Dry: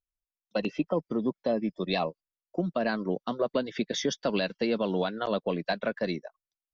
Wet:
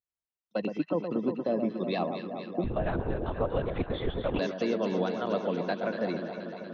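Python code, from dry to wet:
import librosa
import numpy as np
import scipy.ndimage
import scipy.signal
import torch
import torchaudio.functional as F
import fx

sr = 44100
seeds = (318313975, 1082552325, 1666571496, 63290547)

y = scipy.signal.sosfilt(scipy.signal.butter(2, 97.0, 'highpass', fs=sr, output='sos'), x)
y = fx.high_shelf(y, sr, hz=2800.0, db=-9.5)
y = fx.echo_alternate(y, sr, ms=119, hz=1300.0, feedback_pct=86, wet_db=-6.5)
y = fx.lpc_vocoder(y, sr, seeds[0], excitation='whisper', order=10, at=(2.64, 4.39))
y = y * 10.0 ** (-1.5 / 20.0)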